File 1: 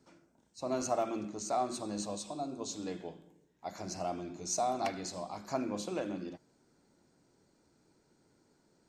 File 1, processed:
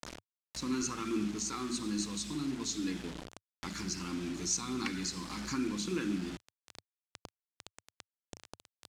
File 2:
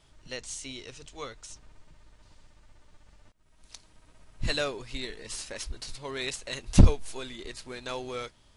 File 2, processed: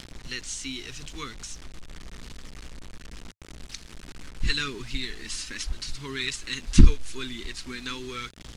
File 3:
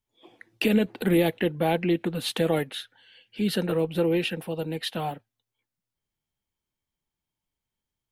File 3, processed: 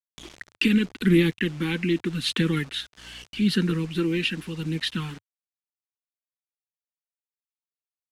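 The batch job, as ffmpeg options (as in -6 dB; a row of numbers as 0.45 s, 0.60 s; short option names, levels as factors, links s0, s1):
-filter_complex "[0:a]aphaser=in_gain=1:out_gain=1:delay=4:decay=0.31:speed=0.83:type=sinusoidal,aeval=exprs='val(0)+0.001*(sin(2*PI*60*n/s)+sin(2*PI*2*60*n/s)/2+sin(2*PI*3*60*n/s)/3+sin(2*PI*4*60*n/s)/4+sin(2*PI*5*60*n/s)/5)':c=same,asplit=2[s0][s1];[s1]acompressor=threshold=0.00891:ratio=5,volume=0.794[s2];[s0][s2]amix=inputs=2:normalize=0,asuperstop=centerf=650:order=4:qfactor=0.69,acrusher=bits=7:mix=0:aa=0.000001,acompressor=mode=upward:threshold=0.0158:ratio=2.5,lowpass=7700,equalizer=f=100:t=o:w=0.26:g=-12,volume=1.33"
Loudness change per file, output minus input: +1.0 LU, +2.0 LU, +1.5 LU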